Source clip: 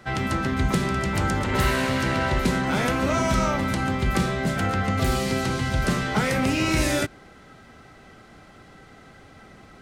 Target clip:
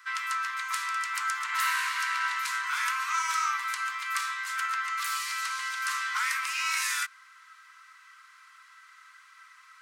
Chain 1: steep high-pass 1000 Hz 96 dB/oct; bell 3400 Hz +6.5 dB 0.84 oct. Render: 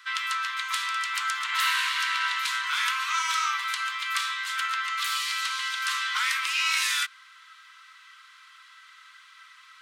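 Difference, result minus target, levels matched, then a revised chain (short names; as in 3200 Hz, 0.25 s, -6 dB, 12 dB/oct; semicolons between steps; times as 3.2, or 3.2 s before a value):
4000 Hz band +5.5 dB
steep high-pass 1000 Hz 96 dB/oct; bell 3400 Hz -4.5 dB 0.84 oct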